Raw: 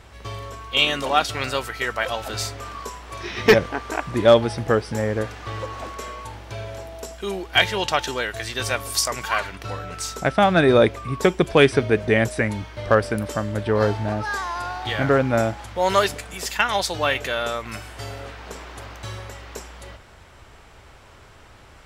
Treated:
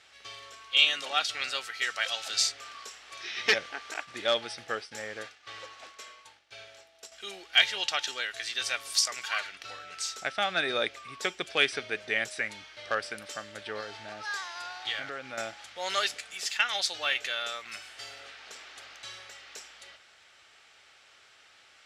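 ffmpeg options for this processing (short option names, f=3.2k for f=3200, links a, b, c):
-filter_complex "[0:a]asettb=1/sr,asplit=3[a][b][c];[a]atrim=end=1.824[d];[b]atrim=start=1.82:end=2.52,asetpts=PTS-STARTPTS,afade=t=in:d=0.004:c=qsin,afade=t=out:st=0.696:d=0.004:c=qsin,equalizer=f=6.6k:w=0.53:g=7[e];[c]atrim=start=2.516[f];[d][e]acrossfade=d=0.004:c1=hsin:c2=qsin[g];[g][f]acrossfade=d=0.004:c1=qsin:c2=hsin,asettb=1/sr,asplit=3[h][i][j];[h]atrim=end=3.944[k];[i]atrim=start=3.94:end=7.12,asetpts=PTS-STARTPTS,afade=t=in:d=0.004:c=qsin,afade=t=out:st=3.176:d=0.004:c=qsin,agate=range=-33dB:threshold=-30dB:ratio=3:release=100:detection=peak[l];[j]atrim=start=7.116[m];[k][l]acrossfade=d=0.004:c1=hsin:c2=qsin[n];[n][m]acrossfade=d=0.004:c1=qsin:c2=hsin,asettb=1/sr,asplit=3[o][p][q];[o]atrim=end=13.804[r];[p]atrim=start=13.8:end=15.38,asetpts=PTS-STARTPTS,afade=t=in:d=0.004:c=qsin,afade=t=out:st=1.576:d=0.004:c=qsin,acompressor=threshold=-20dB:ratio=5:attack=3.2:release=140:knee=1:detection=peak[s];[q]atrim=start=15.376[t];[r][s]acrossfade=d=0.004:c1=hsin:c2=qsin[u];[u][t]acrossfade=d=0.004:c1=qsin:c2=hsin,lowpass=4.2k,aderivative,bandreject=f=1k:w=5.6,volume=6dB"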